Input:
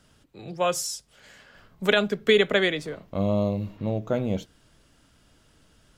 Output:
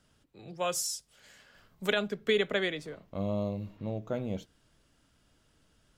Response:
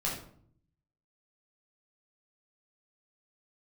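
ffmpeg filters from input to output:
-filter_complex "[0:a]asettb=1/sr,asplit=3[a][b][c];[a]atrim=end=0.594[d];[b]atrim=start=0.59:end=1.92,asetpts=PTS-STARTPTS,afade=t=in:d=0.004:c=qsin,afade=t=out:st=1.326:d=0.004:c=qsin,highshelf=f=3.7k:g=7[e];[c]atrim=start=1.916[f];[d][e]acrossfade=d=0.004:c1=hsin:c2=qsin[g];[g][f]acrossfade=d=0.004:c1=qsin:c2=hsin,volume=-8dB"

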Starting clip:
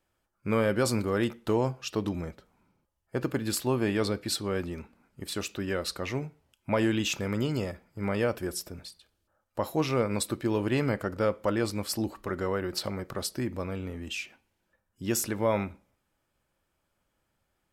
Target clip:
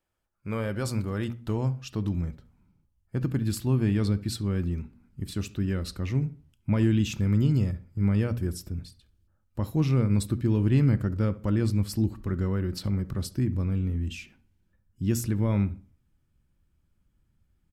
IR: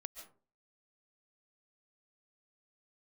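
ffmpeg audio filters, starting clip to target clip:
-filter_complex "[0:a]bandreject=f=119.1:t=h:w=4,bandreject=f=238.2:t=h:w=4,asubboost=boost=10:cutoff=190,asplit=2[a][b];[b]adelay=69,lowpass=f=1.6k:p=1,volume=-17dB,asplit=2[c][d];[d]adelay=69,lowpass=f=1.6k:p=1,volume=0.36,asplit=2[e][f];[f]adelay=69,lowpass=f=1.6k:p=1,volume=0.36[g];[a][c][e][g]amix=inputs=4:normalize=0,volume=-5.5dB"

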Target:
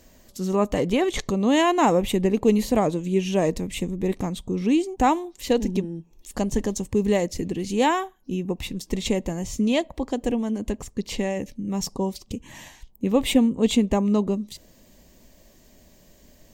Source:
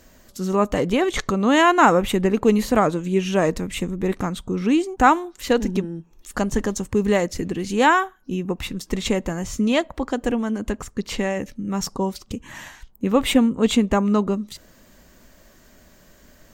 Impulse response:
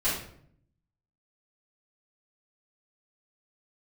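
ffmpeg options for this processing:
-af "asetnsamples=n=441:p=0,asendcmd='1.16 equalizer g -14.5',equalizer=f=1.4k:w=2.3:g=-7.5,volume=-1.5dB"

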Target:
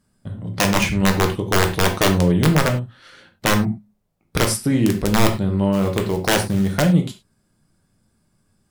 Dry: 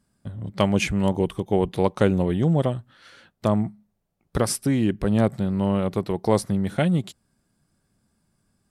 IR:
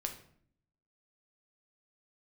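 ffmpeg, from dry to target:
-filter_complex "[0:a]aeval=exprs='(mod(3.98*val(0)+1,2)-1)/3.98':c=same,asplit=3[a][b][c];[a]afade=t=out:st=5.72:d=0.02[d];[b]acrusher=bits=5:mode=log:mix=0:aa=0.000001,afade=t=in:st=5.72:d=0.02,afade=t=out:st=6.72:d=0.02[e];[c]afade=t=in:st=6.72:d=0.02[f];[d][e][f]amix=inputs=3:normalize=0[g];[1:a]atrim=start_sample=2205,afade=t=out:st=0.16:d=0.01,atrim=end_sample=7497[h];[g][h]afir=irnorm=-1:irlink=0,volume=4dB"

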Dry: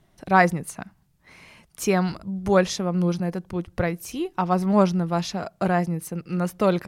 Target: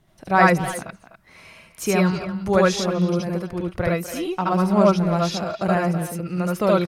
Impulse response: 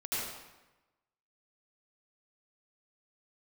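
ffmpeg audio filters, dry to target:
-filter_complex "[0:a]asplit=2[a][b];[b]adelay=250,highpass=300,lowpass=3.4k,asoftclip=type=hard:threshold=-13.5dB,volume=-11dB[c];[a][c]amix=inputs=2:normalize=0[d];[1:a]atrim=start_sample=2205,atrim=end_sample=3528[e];[d][e]afir=irnorm=-1:irlink=0,volume=5dB"

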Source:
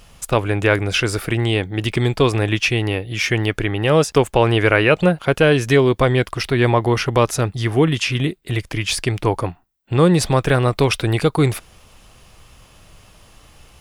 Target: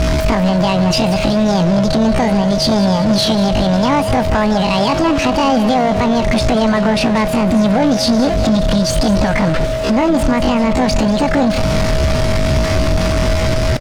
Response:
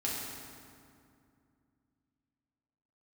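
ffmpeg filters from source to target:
-filter_complex "[0:a]aeval=exprs='val(0)+0.5*0.15*sgn(val(0))':c=same,lowpass=2.6k,lowshelf=f=190:g=7,alimiter=limit=-10dB:level=0:latency=1:release=167,acontrast=24,asetrate=80880,aresample=44100,atempo=0.545254,aeval=exprs='val(0)+0.141*sin(2*PI*640*n/s)':c=same,asoftclip=type=tanh:threshold=-8dB,asplit=6[a][b][c][d][e][f];[b]adelay=190,afreqshift=-41,volume=-13dB[g];[c]adelay=380,afreqshift=-82,volume=-18.5dB[h];[d]adelay=570,afreqshift=-123,volume=-24dB[i];[e]adelay=760,afreqshift=-164,volume=-29.5dB[j];[f]adelay=950,afreqshift=-205,volume=-35.1dB[k];[a][g][h][i][j][k]amix=inputs=6:normalize=0,asplit=2[l][m];[1:a]atrim=start_sample=2205[n];[m][n]afir=irnorm=-1:irlink=0,volume=-21.5dB[o];[l][o]amix=inputs=2:normalize=0"

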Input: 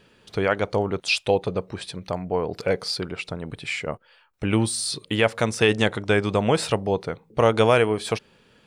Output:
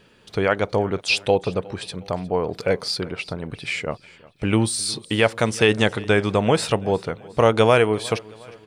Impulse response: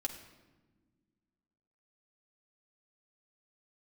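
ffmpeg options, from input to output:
-filter_complex "[0:a]asettb=1/sr,asplit=3[a][b][c];[a]atrim=end=3.014[d];[b]atrim=start=3.01:end=3.74,asetpts=PTS-STARTPTS,afade=t=in:d=0.004:c=qsin,afade=t=out:st=0.726:d=0.004:c=qsin,bandreject=f=7.3k:w=10[e];[c]atrim=start=3.736[f];[d][e]acrossfade=d=0.004:c1=hsin:c2=qsin[g];[g][f]acrossfade=d=0.004:c1=qsin:c2=hsin,aecho=1:1:360|720|1080:0.0794|0.0381|0.0183,volume=2dB"

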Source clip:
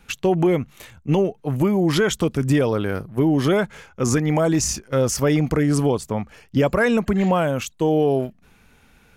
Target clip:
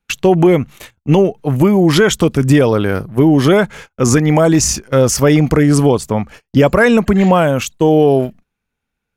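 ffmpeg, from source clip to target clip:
-af "agate=range=-31dB:threshold=-41dB:ratio=16:detection=peak,volume=8dB"

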